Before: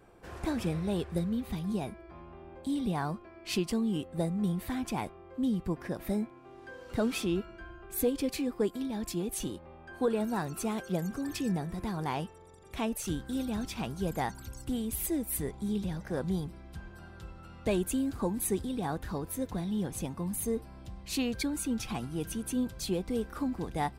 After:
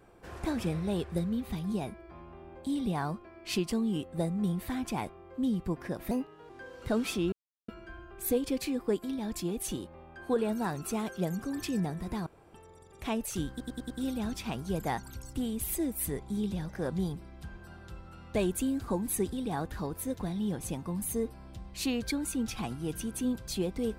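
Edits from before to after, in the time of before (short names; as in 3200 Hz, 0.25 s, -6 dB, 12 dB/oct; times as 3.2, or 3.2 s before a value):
6.11–6.57 speed 120%
7.4 insert silence 0.36 s
11.98–12.26 room tone
13.22 stutter 0.10 s, 5 plays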